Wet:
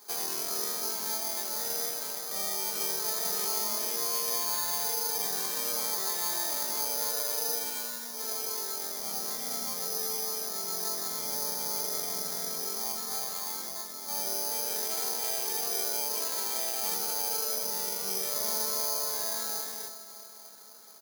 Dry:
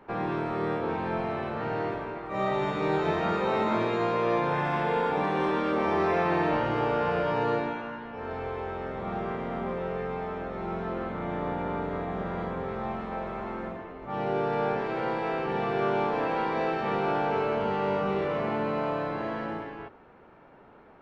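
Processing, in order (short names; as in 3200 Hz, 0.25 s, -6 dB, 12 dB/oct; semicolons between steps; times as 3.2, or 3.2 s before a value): HPF 650 Hz 6 dB/oct; high shelf 4000 Hz +6 dB; comb 4.7 ms, depth 57%; compressor, threshold -30 dBFS, peak gain reduction 7 dB; flange 0.13 Hz, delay 2.6 ms, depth 2.4 ms, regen -56%; on a send: echo with dull and thin repeats by turns 0.129 s, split 1400 Hz, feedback 83%, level -13 dB; on the sum: careless resampling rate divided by 8×, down filtered, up zero stuff; gain -3 dB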